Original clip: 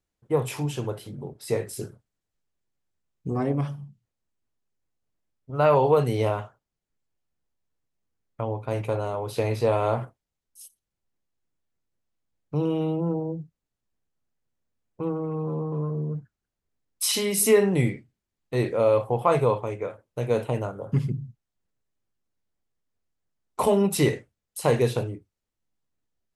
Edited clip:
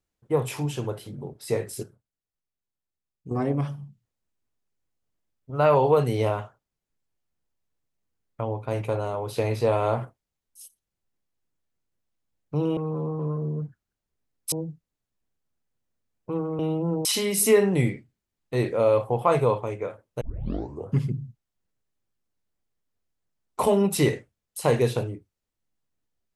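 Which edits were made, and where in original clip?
1.83–3.31 s: gain -9.5 dB
12.77–13.23 s: swap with 15.30–17.05 s
20.21 s: tape start 0.72 s

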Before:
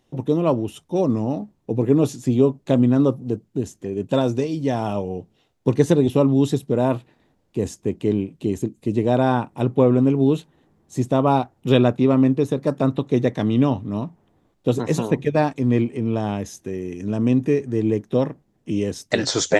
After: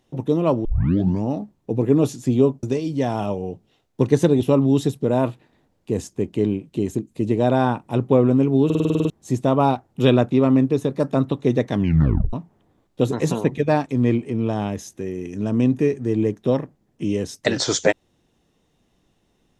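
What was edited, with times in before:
0.65 s: tape start 0.58 s
2.63–4.30 s: delete
10.32 s: stutter in place 0.05 s, 9 plays
13.42 s: tape stop 0.58 s

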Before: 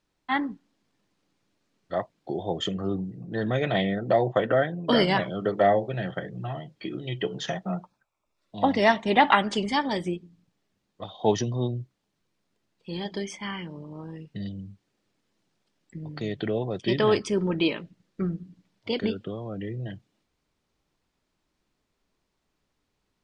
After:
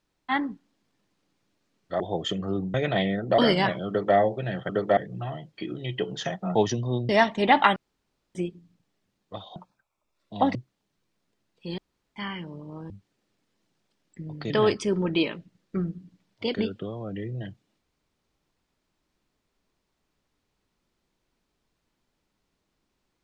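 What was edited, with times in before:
2.00–2.36 s: delete
3.10–3.53 s: delete
4.17–4.89 s: delete
5.39–5.67 s: copy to 6.20 s
7.78–8.77 s: swap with 11.24–11.78 s
9.44–10.03 s: room tone
13.01–13.39 s: room tone
14.13–14.66 s: delete
16.26–16.95 s: delete

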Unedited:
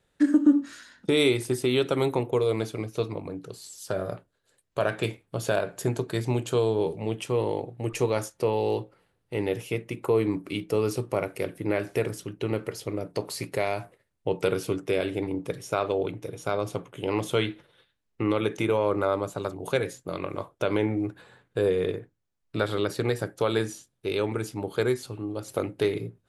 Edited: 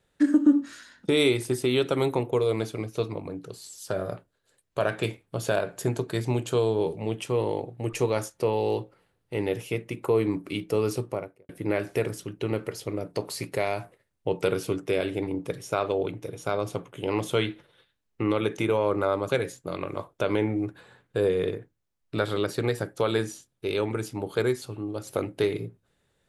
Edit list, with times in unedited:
10.94–11.49 s: studio fade out
19.29–19.70 s: delete

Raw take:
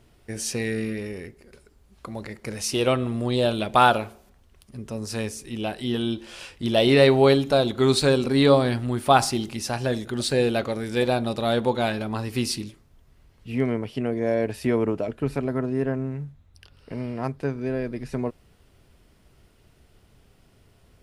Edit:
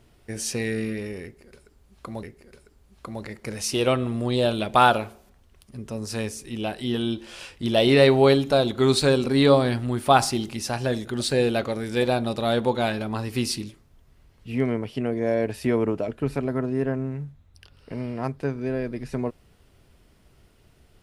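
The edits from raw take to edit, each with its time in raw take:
1.23–2.23 s: loop, 2 plays

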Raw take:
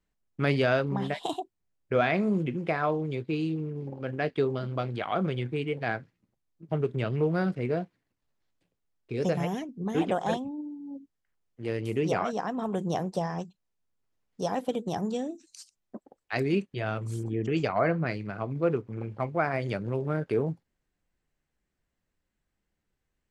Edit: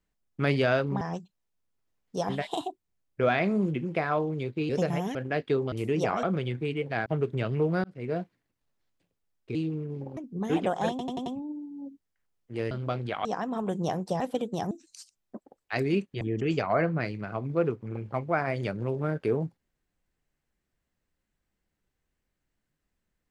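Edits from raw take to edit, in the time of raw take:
3.41–4.03 s: swap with 9.16–9.62 s
4.60–5.14 s: swap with 11.80–12.31 s
5.97–6.67 s: delete
7.45–7.81 s: fade in
10.35 s: stutter 0.09 s, 5 plays
13.26–14.54 s: move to 1.01 s
15.05–15.31 s: delete
16.81–17.27 s: delete

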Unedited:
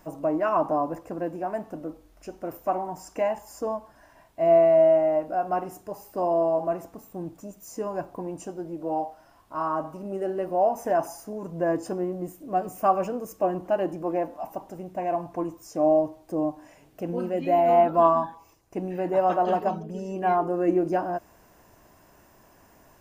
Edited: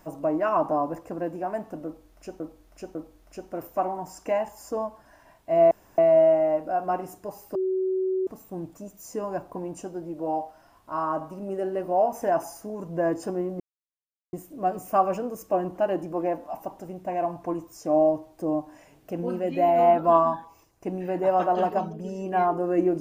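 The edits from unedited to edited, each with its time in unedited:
1.85–2.40 s: loop, 3 plays
4.61 s: insert room tone 0.27 s
6.18–6.90 s: bleep 376 Hz -22.5 dBFS
12.23 s: insert silence 0.73 s

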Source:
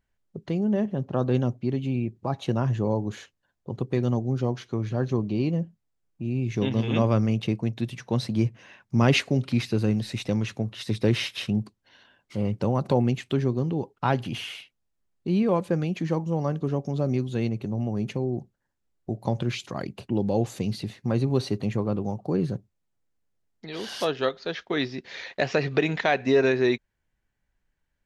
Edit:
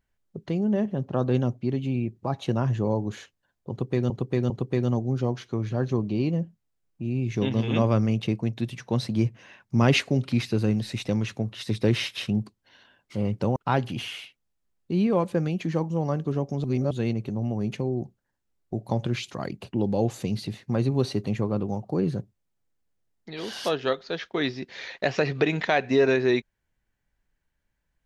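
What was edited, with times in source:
3.70–4.10 s: loop, 3 plays
12.76–13.92 s: delete
17.00–17.27 s: reverse

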